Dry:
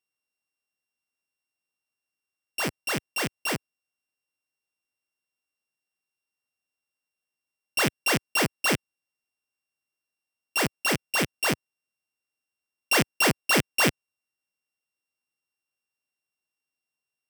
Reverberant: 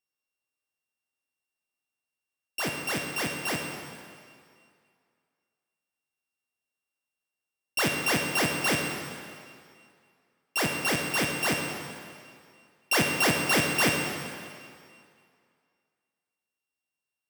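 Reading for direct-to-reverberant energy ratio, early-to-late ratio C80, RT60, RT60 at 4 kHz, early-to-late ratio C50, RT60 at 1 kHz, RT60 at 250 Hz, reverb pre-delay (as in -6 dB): 2.0 dB, 4.5 dB, 2.2 s, 2.0 s, 3.0 dB, 2.3 s, 2.1 s, 23 ms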